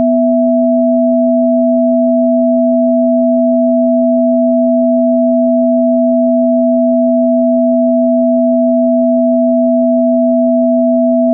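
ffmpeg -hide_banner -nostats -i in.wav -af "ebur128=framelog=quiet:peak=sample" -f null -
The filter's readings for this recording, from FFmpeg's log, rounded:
Integrated loudness:
  I:         -10.6 LUFS
  Threshold: -20.6 LUFS
Loudness range:
  LRA:         0.0 LU
  Threshold: -30.6 LUFS
  LRA low:   -10.6 LUFS
  LRA high:  -10.6 LUFS
Sample peak:
  Peak:       -3.9 dBFS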